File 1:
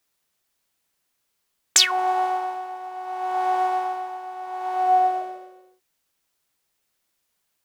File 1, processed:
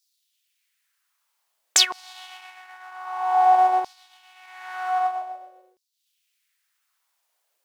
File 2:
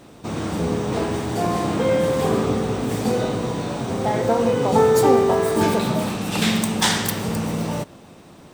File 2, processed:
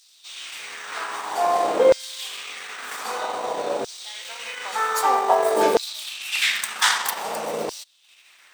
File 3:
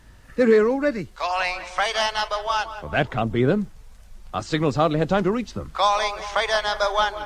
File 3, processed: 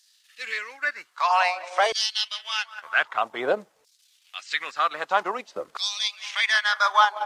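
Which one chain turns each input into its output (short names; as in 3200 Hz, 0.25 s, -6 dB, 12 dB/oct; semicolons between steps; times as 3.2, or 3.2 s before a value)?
transient shaper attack -2 dB, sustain -8 dB; LFO high-pass saw down 0.52 Hz 440–4900 Hz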